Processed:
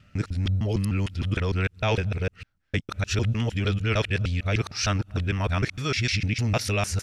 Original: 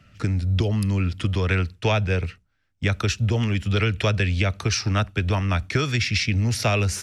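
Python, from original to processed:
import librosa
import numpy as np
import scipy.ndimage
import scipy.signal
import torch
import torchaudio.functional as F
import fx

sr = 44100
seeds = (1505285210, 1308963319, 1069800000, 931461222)

y = fx.local_reverse(x, sr, ms=152.0)
y = y * 10.0 ** (-3.0 / 20.0)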